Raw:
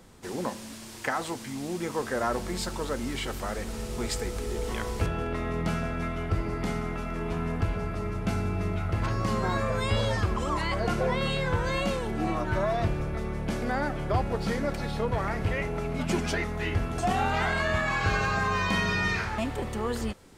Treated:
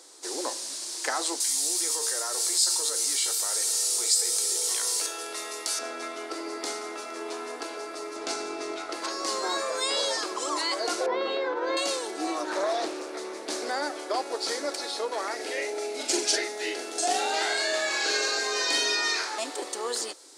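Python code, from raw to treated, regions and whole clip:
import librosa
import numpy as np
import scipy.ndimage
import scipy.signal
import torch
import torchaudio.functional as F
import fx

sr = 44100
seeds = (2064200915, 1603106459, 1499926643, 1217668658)

y = fx.chain(x, sr, fx.riaa(side='recording'),
    fx.comb_fb(f0_hz=460.0, decay_s=0.43, harmonics='all', damping=0.0, mix_pct=80),
    fx.env_flatten(amount_pct=70), at=(1.4, 5.79))
y = fx.chain(y, sr, fx.lowpass(hz=8200.0, slope=12),
    fx.low_shelf(hz=89.0, db=11.5),
    fx.env_flatten(amount_pct=70), at=(8.16, 8.93))
y = fx.chain(y, sr, fx.spacing_loss(db_at_10k=44),
    fx.env_flatten(amount_pct=100), at=(11.06, 11.77))
y = fx.chain(y, sr, fx.low_shelf(hz=150.0, db=11.0),
    fx.doppler_dist(depth_ms=0.58), at=(12.43, 13.7))
y = fx.chain(y, sr, fx.peak_eq(hz=1100.0, db=-12.0, octaves=0.38),
    fx.doubler(ms=43.0, db=-4), at=(15.35, 18.95))
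y = scipy.signal.sosfilt(scipy.signal.ellip(4, 1.0, 50, 310.0, 'highpass', fs=sr, output='sos'), y)
y = fx.band_shelf(y, sr, hz=6300.0, db=14.0, octaves=1.7)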